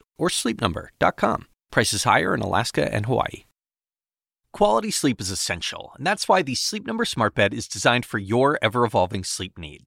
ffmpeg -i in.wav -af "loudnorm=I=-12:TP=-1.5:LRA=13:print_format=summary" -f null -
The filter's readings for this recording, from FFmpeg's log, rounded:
Input Integrated:    -22.4 LUFS
Input True Peak:      -4.3 dBTP
Input LRA:             2.0 LU
Input Threshold:     -32.6 LUFS